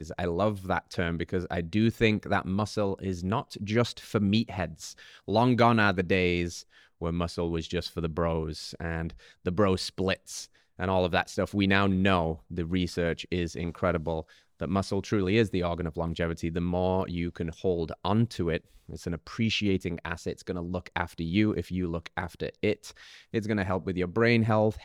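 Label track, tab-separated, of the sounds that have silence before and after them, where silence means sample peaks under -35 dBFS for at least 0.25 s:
5.280000	6.600000	sound
7.020000	9.100000	sound
9.460000	10.440000	sound
10.790000	14.210000	sound
14.610000	18.570000	sound
18.890000	22.890000	sound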